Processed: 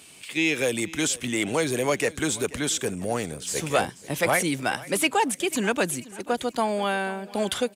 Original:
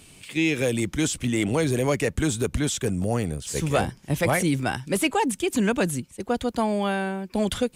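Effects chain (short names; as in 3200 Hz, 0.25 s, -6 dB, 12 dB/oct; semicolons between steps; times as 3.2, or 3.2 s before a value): HPF 190 Hz 6 dB/oct; low shelf 330 Hz -7.5 dB; feedback echo 0.486 s, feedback 39%, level -19.5 dB; gain +2.5 dB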